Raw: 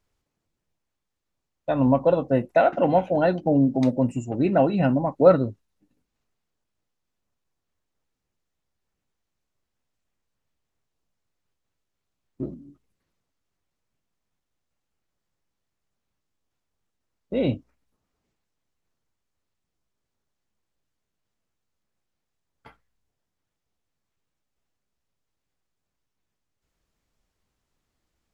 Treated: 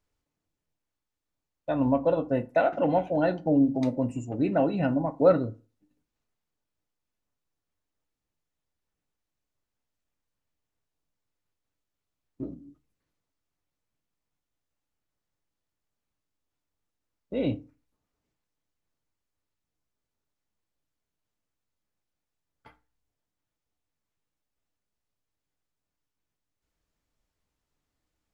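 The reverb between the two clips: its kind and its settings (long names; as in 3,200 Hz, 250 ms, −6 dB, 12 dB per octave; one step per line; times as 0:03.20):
feedback delay network reverb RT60 0.35 s, low-frequency decay 1×, high-frequency decay 0.6×, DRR 10.5 dB
level −5 dB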